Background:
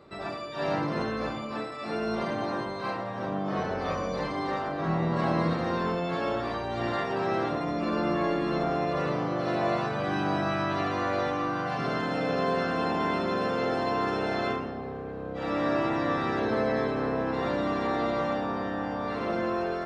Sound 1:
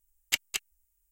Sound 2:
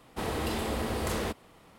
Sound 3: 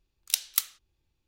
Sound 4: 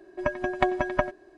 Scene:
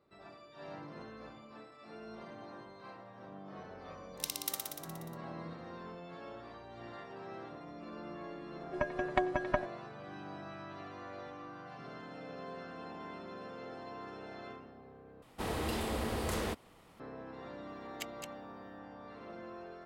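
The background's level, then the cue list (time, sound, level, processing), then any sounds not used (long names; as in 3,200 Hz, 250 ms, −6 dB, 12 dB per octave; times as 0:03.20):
background −18.5 dB
0:03.90: mix in 3 −13 dB + flutter between parallel walls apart 10.2 metres, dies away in 1.5 s
0:08.55: mix in 4 −7 dB
0:15.22: overwrite with 2 −4 dB
0:17.68: mix in 1 −16.5 dB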